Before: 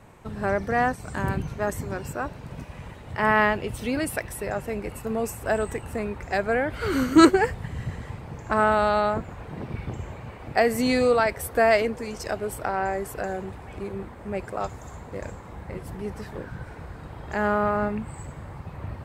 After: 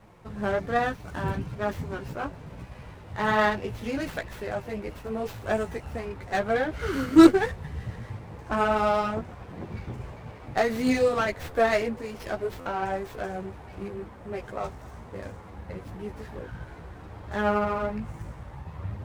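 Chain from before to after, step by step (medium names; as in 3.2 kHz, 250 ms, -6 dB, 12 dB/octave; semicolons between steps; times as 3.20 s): chorus voices 4, 0.57 Hz, delay 14 ms, depth 4.5 ms; buffer glitch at 12.60 s, samples 512, times 4; sliding maximum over 5 samples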